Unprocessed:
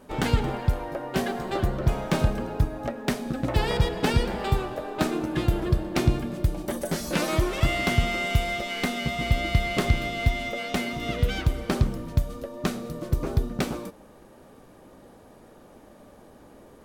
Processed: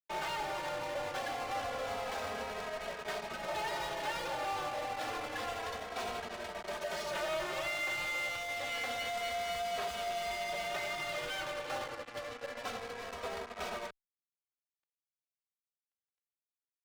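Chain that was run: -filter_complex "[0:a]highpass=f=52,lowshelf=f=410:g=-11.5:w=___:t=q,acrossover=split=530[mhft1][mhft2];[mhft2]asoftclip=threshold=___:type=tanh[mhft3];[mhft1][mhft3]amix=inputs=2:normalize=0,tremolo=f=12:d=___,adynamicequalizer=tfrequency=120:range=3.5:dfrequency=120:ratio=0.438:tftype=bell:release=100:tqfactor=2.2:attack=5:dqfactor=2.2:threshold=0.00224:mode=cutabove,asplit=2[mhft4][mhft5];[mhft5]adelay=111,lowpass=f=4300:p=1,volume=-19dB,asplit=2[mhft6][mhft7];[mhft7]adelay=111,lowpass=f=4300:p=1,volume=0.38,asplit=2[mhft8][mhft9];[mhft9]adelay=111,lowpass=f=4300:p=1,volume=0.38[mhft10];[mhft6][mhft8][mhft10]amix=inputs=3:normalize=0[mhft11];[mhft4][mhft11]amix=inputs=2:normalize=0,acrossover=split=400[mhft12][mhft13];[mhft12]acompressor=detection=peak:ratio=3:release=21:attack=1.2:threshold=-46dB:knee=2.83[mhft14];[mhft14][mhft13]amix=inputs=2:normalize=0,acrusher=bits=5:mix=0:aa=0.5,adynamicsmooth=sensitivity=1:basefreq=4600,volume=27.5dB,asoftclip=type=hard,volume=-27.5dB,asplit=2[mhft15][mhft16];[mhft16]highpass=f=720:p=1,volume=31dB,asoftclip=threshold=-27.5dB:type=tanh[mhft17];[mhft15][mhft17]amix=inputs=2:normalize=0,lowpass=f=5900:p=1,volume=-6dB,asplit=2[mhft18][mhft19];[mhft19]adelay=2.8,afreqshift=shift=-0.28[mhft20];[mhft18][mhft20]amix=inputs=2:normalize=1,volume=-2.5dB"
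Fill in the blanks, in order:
1.5, -26dB, 0.41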